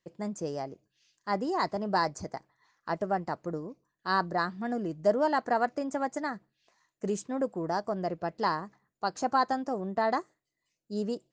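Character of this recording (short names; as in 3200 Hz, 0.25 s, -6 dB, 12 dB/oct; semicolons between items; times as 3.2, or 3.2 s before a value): noise floor -84 dBFS; spectral tilt -4.0 dB/oct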